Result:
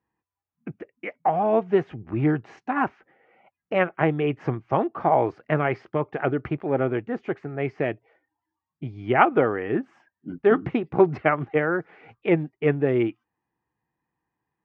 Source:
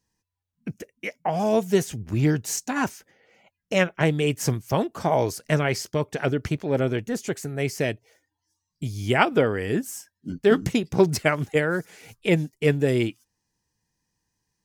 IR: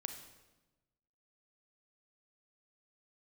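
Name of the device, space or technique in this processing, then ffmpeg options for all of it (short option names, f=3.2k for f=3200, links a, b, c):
bass cabinet: -af "highpass=78,equalizer=f=92:t=q:w=4:g=-9,equalizer=f=190:t=q:w=4:g=-4,equalizer=f=340:t=q:w=4:g=5,equalizer=f=770:t=q:w=4:g=7,equalizer=f=1.2k:t=q:w=4:g=7,lowpass=f=2.4k:w=0.5412,lowpass=f=2.4k:w=1.3066,volume=-1.5dB"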